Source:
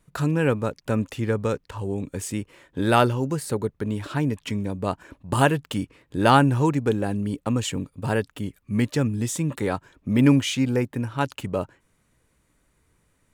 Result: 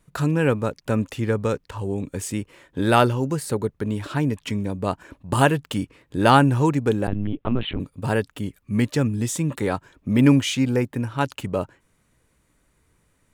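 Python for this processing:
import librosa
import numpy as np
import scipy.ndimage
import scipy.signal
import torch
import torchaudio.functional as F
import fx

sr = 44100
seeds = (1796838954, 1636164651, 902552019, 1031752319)

y = fx.lpc_vocoder(x, sr, seeds[0], excitation='pitch_kept', order=10, at=(7.07, 7.8))
y = F.gain(torch.from_numpy(y), 1.5).numpy()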